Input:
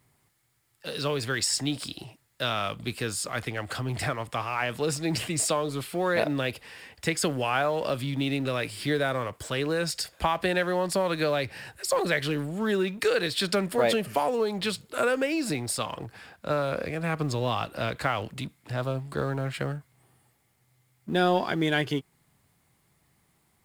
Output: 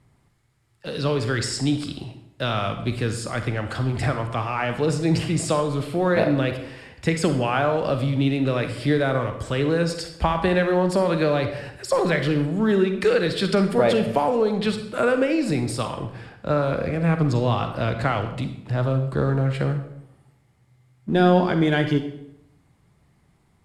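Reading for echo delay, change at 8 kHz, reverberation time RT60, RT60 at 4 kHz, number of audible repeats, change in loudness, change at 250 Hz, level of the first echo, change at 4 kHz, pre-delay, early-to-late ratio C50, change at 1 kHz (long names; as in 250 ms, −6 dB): no echo audible, −3.5 dB, 0.75 s, 0.60 s, no echo audible, +5.5 dB, +8.0 dB, no echo audible, 0.0 dB, 37 ms, 8.5 dB, +4.0 dB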